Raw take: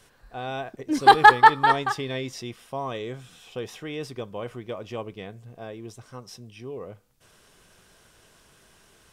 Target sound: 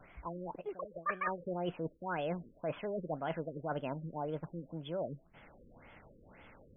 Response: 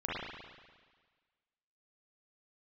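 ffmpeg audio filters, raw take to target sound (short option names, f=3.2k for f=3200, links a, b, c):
-af "areverse,acompressor=threshold=-35dB:ratio=10,areverse,asetrate=59535,aresample=44100,afftfilt=real='re*lt(b*sr/1024,530*pow(3500/530,0.5+0.5*sin(2*PI*1.9*pts/sr)))':imag='im*lt(b*sr/1024,530*pow(3500/530,0.5+0.5*sin(2*PI*1.9*pts/sr)))':win_size=1024:overlap=0.75,volume=2.5dB"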